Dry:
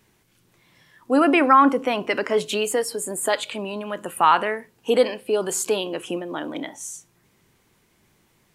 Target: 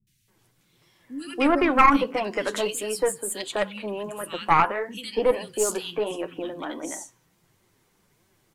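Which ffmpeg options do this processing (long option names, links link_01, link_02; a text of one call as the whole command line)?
ffmpeg -i in.wav -filter_complex "[0:a]flanger=delay=5.2:depth=5.2:regen=31:speed=1.5:shape=sinusoidal,acrossover=split=200|2400[link_01][link_02][link_03];[link_03]adelay=70[link_04];[link_02]adelay=280[link_05];[link_01][link_05][link_04]amix=inputs=3:normalize=0,aeval=exprs='0.447*(cos(1*acos(clip(val(0)/0.447,-1,1)))-cos(1*PI/2))+0.224*(cos(2*acos(clip(val(0)/0.447,-1,1)))-cos(2*PI/2))+0.00794*(cos(8*acos(clip(val(0)/0.447,-1,1)))-cos(8*PI/2))':channel_layout=same,volume=1.5dB" out.wav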